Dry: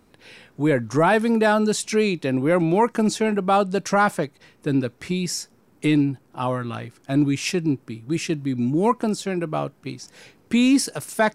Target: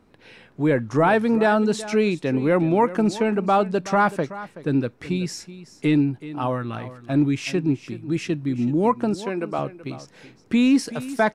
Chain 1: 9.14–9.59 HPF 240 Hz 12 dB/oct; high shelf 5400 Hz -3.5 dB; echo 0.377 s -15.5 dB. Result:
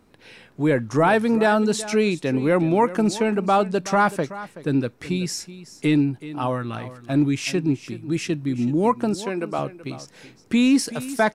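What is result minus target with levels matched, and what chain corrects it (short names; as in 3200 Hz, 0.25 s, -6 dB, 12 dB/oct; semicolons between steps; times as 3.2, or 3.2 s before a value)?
8000 Hz band +5.5 dB
9.14–9.59 HPF 240 Hz 12 dB/oct; high shelf 5400 Hz -12.5 dB; echo 0.377 s -15.5 dB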